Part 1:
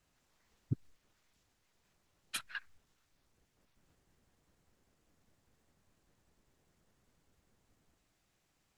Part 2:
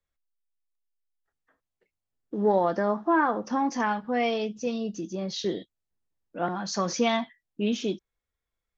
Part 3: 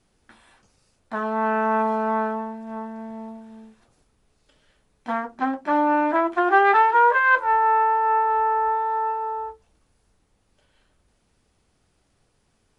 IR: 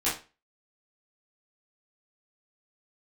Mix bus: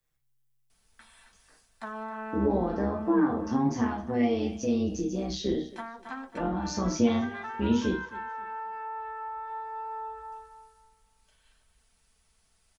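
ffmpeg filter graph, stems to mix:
-filter_complex "[1:a]tremolo=f=130:d=0.71,volume=1dB,asplit=3[link_01][link_02][link_03];[link_02]volume=-5.5dB[link_04];[link_03]volume=-17.5dB[link_05];[2:a]equalizer=frequency=300:width_type=o:width=2.3:gain=-12.5,aecho=1:1:4.5:0.46,acompressor=threshold=-27dB:ratio=6,adelay=700,volume=-2dB,asplit=2[link_06][link_07];[link_07]volume=-10dB[link_08];[3:a]atrim=start_sample=2205[link_09];[link_04][link_09]afir=irnorm=-1:irlink=0[link_10];[link_05][link_08]amix=inputs=2:normalize=0,aecho=0:1:269|538|807|1076:1|0.3|0.09|0.027[link_11];[link_01][link_06][link_10][link_11]amix=inputs=4:normalize=0,highshelf=frequency=7200:gain=8.5,acrossover=split=360[link_12][link_13];[link_13]acompressor=threshold=-38dB:ratio=3[link_14];[link_12][link_14]amix=inputs=2:normalize=0"

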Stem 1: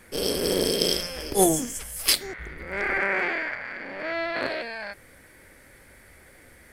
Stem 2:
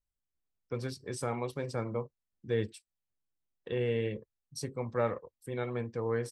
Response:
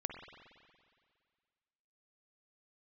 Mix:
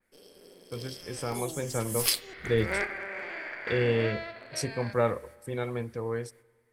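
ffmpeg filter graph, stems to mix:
-filter_complex "[0:a]equalizer=frequency=60:width=1.1:gain=-14,acompressor=threshold=-29dB:ratio=6,volume=-7.5dB,afade=type=in:start_time=1.86:duration=0.28:silence=0.375837,afade=type=out:start_time=3.6:duration=0.65:silence=0.281838,asplit=2[link_01][link_02];[link_02]volume=-6dB[link_03];[1:a]volume=-4dB,asplit=3[link_04][link_05][link_06];[link_05]volume=-18dB[link_07];[link_06]apad=whole_len=296357[link_08];[link_01][link_08]sidechaingate=range=-33dB:threshold=-58dB:ratio=16:detection=peak[link_09];[2:a]atrim=start_sample=2205[link_10];[link_03][link_07]amix=inputs=2:normalize=0[link_11];[link_11][link_10]afir=irnorm=-1:irlink=0[link_12];[link_09][link_04][link_12]amix=inputs=3:normalize=0,equalizer=frequency=74:width=6.3:gain=14,dynaudnorm=framelen=330:gausssize=9:maxgain=8dB,adynamicequalizer=threshold=0.00708:dfrequency=3000:dqfactor=0.7:tfrequency=3000:tqfactor=0.7:attack=5:release=100:ratio=0.375:range=2:mode=boostabove:tftype=highshelf"

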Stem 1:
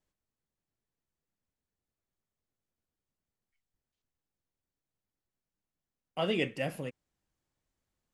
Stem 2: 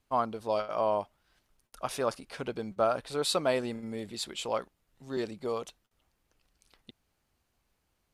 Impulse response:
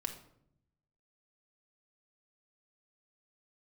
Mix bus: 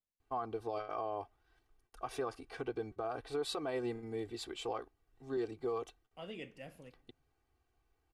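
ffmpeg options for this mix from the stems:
-filter_complex "[0:a]volume=-18dB,asplit=2[link_01][link_02];[link_02]volume=-10.5dB[link_03];[1:a]highshelf=frequency=2900:gain=-12,aecho=1:1:2.6:0.89,adelay=200,volume=-3.5dB[link_04];[2:a]atrim=start_sample=2205[link_05];[link_03][link_05]afir=irnorm=-1:irlink=0[link_06];[link_01][link_04][link_06]amix=inputs=3:normalize=0,alimiter=level_in=4.5dB:limit=-24dB:level=0:latency=1:release=97,volume=-4.5dB"

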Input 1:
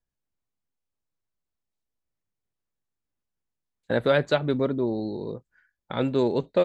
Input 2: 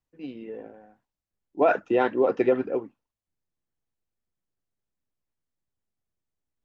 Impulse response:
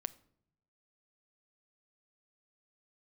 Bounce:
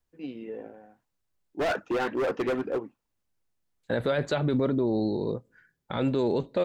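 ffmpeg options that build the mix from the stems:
-filter_complex "[0:a]volume=2.5dB,asplit=2[link_01][link_02];[link_02]volume=-15.5dB[link_03];[1:a]asoftclip=type=hard:threshold=-24dB,volume=0dB[link_04];[2:a]atrim=start_sample=2205[link_05];[link_03][link_05]afir=irnorm=-1:irlink=0[link_06];[link_01][link_04][link_06]amix=inputs=3:normalize=0,alimiter=limit=-17dB:level=0:latency=1:release=24"

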